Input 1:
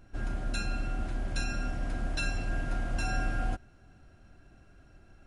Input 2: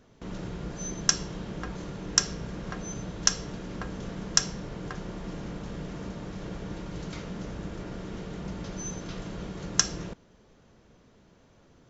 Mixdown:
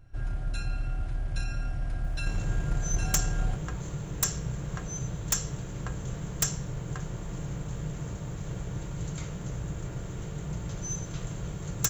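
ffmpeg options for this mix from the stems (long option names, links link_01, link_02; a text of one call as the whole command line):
ffmpeg -i stem1.wav -i stem2.wav -filter_complex "[0:a]volume=-1.5dB[link_01];[1:a]aexciter=amount=14.5:drive=5.4:freq=7700,adelay=2050,volume=0.5dB[link_02];[link_01][link_02]amix=inputs=2:normalize=0,lowshelf=frequency=170:width_type=q:width=3:gain=6,aeval=exprs='(tanh(1.78*val(0)+0.6)-tanh(0.6))/1.78':channel_layout=same,aeval=exprs='0.158*(abs(mod(val(0)/0.158+3,4)-2)-1)':channel_layout=same" out.wav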